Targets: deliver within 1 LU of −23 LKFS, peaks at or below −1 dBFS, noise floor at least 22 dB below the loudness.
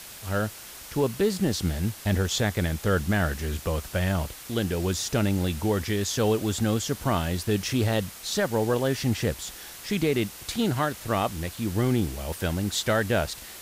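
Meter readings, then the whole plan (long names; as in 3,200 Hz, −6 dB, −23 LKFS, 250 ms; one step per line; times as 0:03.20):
background noise floor −43 dBFS; target noise floor −49 dBFS; integrated loudness −27.0 LKFS; sample peak −13.5 dBFS; target loudness −23.0 LKFS
→ noise reduction from a noise print 6 dB
level +4 dB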